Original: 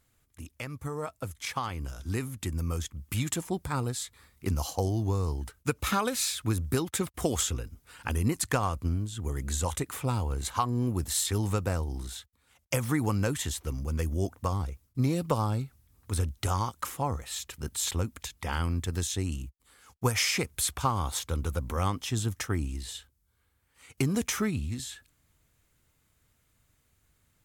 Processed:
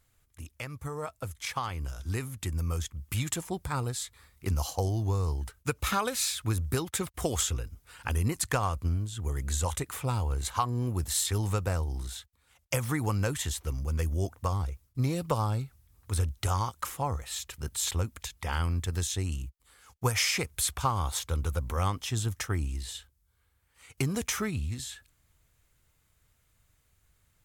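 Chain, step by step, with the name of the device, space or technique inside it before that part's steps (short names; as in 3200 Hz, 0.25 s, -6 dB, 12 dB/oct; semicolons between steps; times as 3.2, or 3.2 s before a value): low shelf boost with a cut just above (low shelf 60 Hz +5 dB; bell 250 Hz -5.5 dB 1.2 oct)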